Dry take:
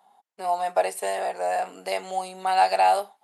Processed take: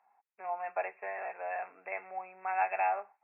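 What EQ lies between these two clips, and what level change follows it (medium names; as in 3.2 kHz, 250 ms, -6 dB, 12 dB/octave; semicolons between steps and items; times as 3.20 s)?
brick-wall FIR low-pass 2.7 kHz; distance through air 250 m; differentiator; +9.0 dB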